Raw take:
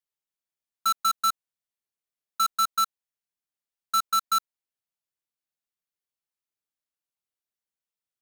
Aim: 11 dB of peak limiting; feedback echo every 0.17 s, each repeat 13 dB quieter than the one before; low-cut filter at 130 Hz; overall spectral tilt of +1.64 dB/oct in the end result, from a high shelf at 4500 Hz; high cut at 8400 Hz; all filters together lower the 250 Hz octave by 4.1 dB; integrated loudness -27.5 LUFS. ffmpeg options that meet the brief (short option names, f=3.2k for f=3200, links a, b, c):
-af "highpass=130,lowpass=8.4k,equalizer=f=250:t=o:g=-4.5,highshelf=f=4.5k:g=7,alimiter=level_in=1dB:limit=-24dB:level=0:latency=1,volume=-1dB,aecho=1:1:170|340|510:0.224|0.0493|0.0108,volume=7.5dB"